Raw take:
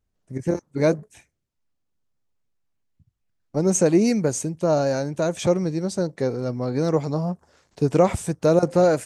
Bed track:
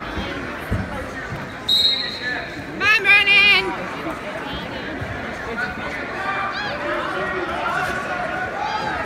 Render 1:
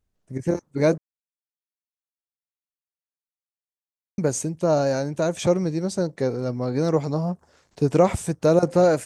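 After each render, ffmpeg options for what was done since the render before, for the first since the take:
ffmpeg -i in.wav -filter_complex "[0:a]asplit=3[link_01][link_02][link_03];[link_01]atrim=end=0.98,asetpts=PTS-STARTPTS,afade=type=out:start_time=0.976:duration=0.004:curve=hsin[link_04];[link_02]atrim=start=0.98:end=4.18,asetpts=PTS-STARTPTS,volume=0[link_05];[link_03]atrim=start=4.18,asetpts=PTS-STARTPTS,afade=type=in:duration=0.004:curve=hsin[link_06];[link_04][link_05][link_06]concat=n=3:v=0:a=1" out.wav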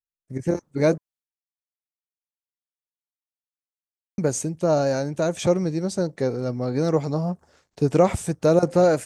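ffmpeg -i in.wav -af "bandreject=frequency=1000:width=21,agate=range=-33dB:threshold=-54dB:ratio=3:detection=peak" out.wav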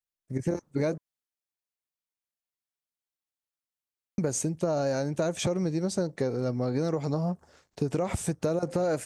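ffmpeg -i in.wav -af "alimiter=limit=-13dB:level=0:latency=1:release=77,acompressor=threshold=-24dB:ratio=6" out.wav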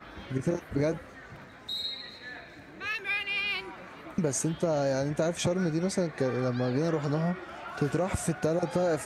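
ffmpeg -i in.wav -i bed.wav -filter_complex "[1:a]volume=-18dB[link_01];[0:a][link_01]amix=inputs=2:normalize=0" out.wav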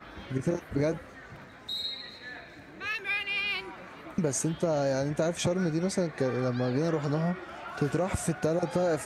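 ffmpeg -i in.wav -af anull out.wav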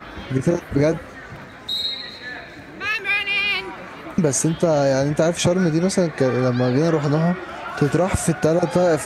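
ffmpeg -i in.wav -af "volume=10dB" out.wav

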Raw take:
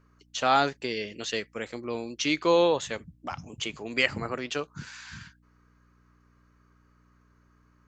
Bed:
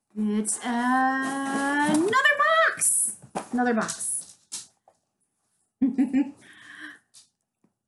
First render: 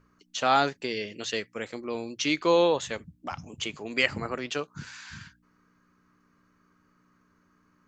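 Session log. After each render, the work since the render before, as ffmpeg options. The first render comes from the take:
ffmpeg -i in.wav -af "bandreject=frequency=60:width_type=h:width=4,bandreject=frequency=120:width_type=h:width=4" out.wav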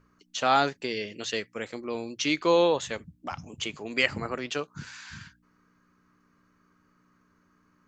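ffmpeg -i in.wav -af anull out.wav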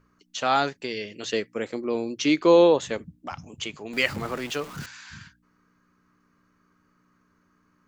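ffmpeg -i in.wav -filter_complex "[0:a]asettb=1/sr,asplit=3[link_01][link_02][link_03];[link_01]atrim=end=1.234[link_04];[link_02]atrim=start=1.23:end=3.19,asetpts=PTS-STARTPTS,afade=type=in:duration=0.004:curve=qsin,afade=type=out:start_time=1.956:duration=0.004:curve=qsin,equalizer=frequency=330:width=0.61:gain=7.5[link_05];[link_03]atrim=start=3.186[link_06];[link_04][link_05]acrossfade=duration=0.004:curve1=hsin:curve2=qsin[link_07];[link_07][link_06]acrossfade=duration=0.004:curve1=qsin:curve2=hsin,asettb=1/sr,asplit=3[link_08][link_09][link_10];[link_08]atrim=end=3.934[link_11];[link_09]atrim=start=3.93:end=4.86,asetpts=PTS-STARTPTS,afade=type=in:duration=0.004:curve=qsin,afade=type=out:start_time=0.926:duration=0.004:curve=qsin,aeval=exprs='val(0)+0.5*0.0158*sgn(val(0))':channel_layout=same[link_12];[link_10]atrim=start=4.856[link_13];[link_11][link_12]acrossfade=duration=0.004:curve1=hsin:curve2=qsin[link_14];[link_14][link_13]acrossfade=duration=0.004:curve1=qsin:curve2=hsin" out.wav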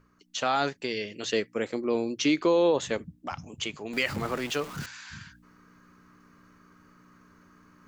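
ffmpeg -i in.wav -af "alimiter=limit=-15dB:level=0:latency=1:release=49,areverse,acompressor=mode=upward:threshold=-47dB:ratio=2.5,areverse" out.wav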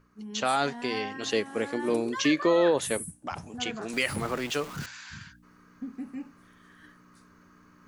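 ffmpeg -i in.wav -i bed.wav -filter_complex "[1:a]volume=-15dB[link_01];[0:a][link_01]amix=inputs=2:normalize=0" out.wav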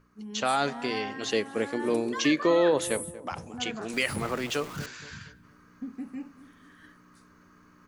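ffmpeg -i in.wav -filter_complex "[0:a]asplit=2[link_01][link_02];[link_02]adelay=236,lowpass=frequency=1200:poles=1,volume=-15.5dB,asplit=2[link_03][link_04];[link_04]adelay=236,lowpass=frequency=1200:poles=1,volume=0.43,asplit=2[link_05][link_06];[link_06]adelay=236,lowpass=frequency=1200:poles=1,volume=0.43,asplit=2[link_07][link_08];[link_08]adelay=236,lowpass=frequency=1200:poles=1,volume=0.43[link_09];[link_01][link_03][link_05][link_07][link_09]amix=inputs=5:normalize=0" out.wav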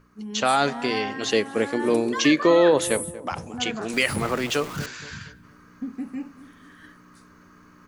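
ffmpeg -i in.wav -af "volume=5.5dB" out.wav

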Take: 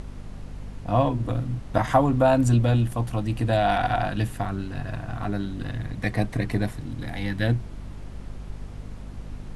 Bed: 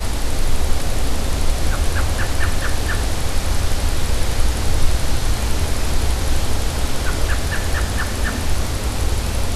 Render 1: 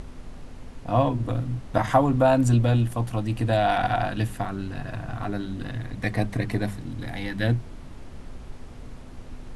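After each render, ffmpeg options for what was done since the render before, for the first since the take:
ffmpeg -i in.wav -af "bandreject=frequency=50:width_type=h:width=4,bandreject=frequency=100:width_type=h:width=4,bandreject=frequency=150:width_type=h:width=4,bandreject=frequency=200:width_type=h:width=4" out.wav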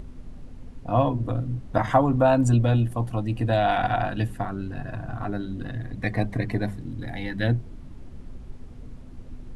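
ffmpeg -i in.wav -af "afftdn=noise_reduction=9:noise_floor=-41" out.wav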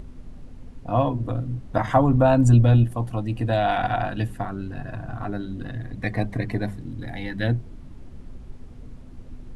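ffmpeg -i in.wav -filter_complex "[0:a]asettb=1/sr,asplit=3[link_01][link_02][link_03];[link_01]atrim=end=1.964[link_04];[link_02]atrim=start=1.96:end=2.84,asetpts=PTS-STARTPTS,afade=type=in:duration=0.004:curve=qsin,afade=type=out:start_time=0.876:duration=0.004:curve=qsin,lowshelf=frequency=190:gain=7.5[link_05];[link_03]atrim=start=2.836[link_06];[link_04][link_05]acrossfade=duration=0.004:curve1=hsin:curve2=qsin[link_07];[link_07][link_06]acrossfade=duration=0.004:curve1=qsin:curve2=hsin" out.wav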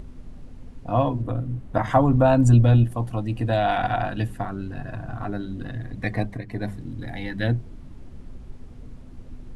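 ffmpeg -i in.wav -filter_complex "[0:a]asettb=1/sr,asplit=3[link_01][link_02][link_03];[link_01]atrim=end=1.224[link_04];[link_02]atrim=start=1.22:end=1.86,asetpts=PTS-STARTPTS,afade=type=in:duration=0.004:curve=qsin,afade=type=out:start_time=0.636:duration=0.004:curve=qsin,equalizer=frequency=5300:width=0.86:gain=-5.5[link_05];[link_03]atrim=start=1.856[link_06];[link_04][link_05]acrossfade=duration=0.004:curve1=hsin:curve2=qsin[link_07];[link_07][link_06]acrossfade=duration=0.004:curve1=qsin:curve2=hsin,asplit=3[link_08][link_09][link_10];[link_08]atrim=end=6.45,asetpts=PTS-STARTPTS,afade=type=out:start_time=6.12:duration=0.33:curve=qsin:silence=0.266073[link_11];[link_09]atrim=start=6.45:end=6.46,asetpts=PTS-STARTPTS,volume=-11.5dB[link_12];[link_10]atrim=start=6.46,asetpts=PTS-STARTPTS,afade=type=in:duration=0.33:curve=qsin:silence=0.266073[link_13];[link_11][link_12][link_13]concat=n=3:v=0:a=1" out.wav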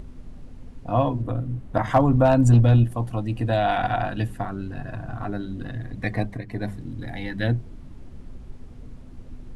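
ffmpeg -i in.wav -af "asoftclip=type=hard:threshold=-9dB" out.wav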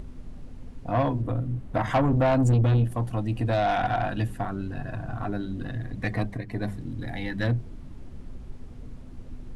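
ffmpeg -i in.wav -af "asoftclip=type=tanh:threshold=-17dB" out.wav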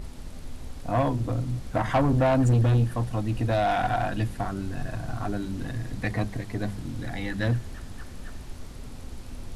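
ffmpeg -i in.wav -i bed.wav -filter_complex "[1:a]volume=-23.5dB[link_01];[0:a][link_01]amix=inputs=2:normalize=0" out.wav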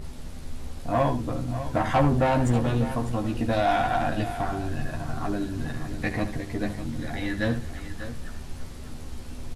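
ffmpeg -i in.wav -filter_complex "[0:a]asplit=2[link_01][link_02];[link_02]adelay=13,volume=-4dB[link_03];[link_01][link_03]amix=inputs=2:normalize=0,aecho=1:1:73|597:0.251|0.251" out.wav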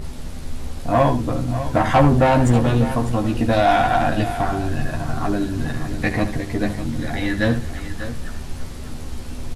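ffmpeg -i in.wav -af "volume=7dB" out.wav

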